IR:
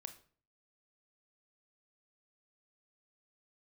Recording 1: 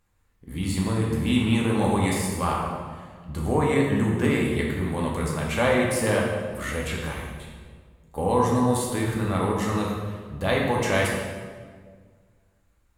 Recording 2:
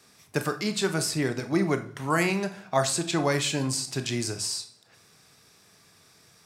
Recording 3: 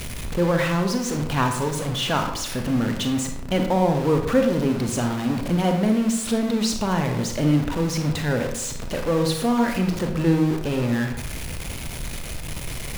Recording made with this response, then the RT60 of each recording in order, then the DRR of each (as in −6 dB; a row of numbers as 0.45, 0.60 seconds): 2; 1.7, 0.45, 0.75 seconds; −3.0, 8.0, 4.5 decibels